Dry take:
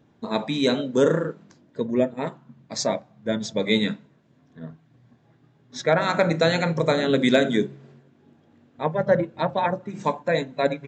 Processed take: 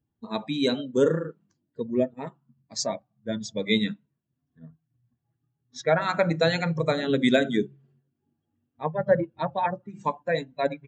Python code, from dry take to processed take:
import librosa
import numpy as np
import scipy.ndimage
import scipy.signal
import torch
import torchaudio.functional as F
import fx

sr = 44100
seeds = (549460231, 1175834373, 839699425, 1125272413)

y = fx.bin_expand(x, sr, power=1.5)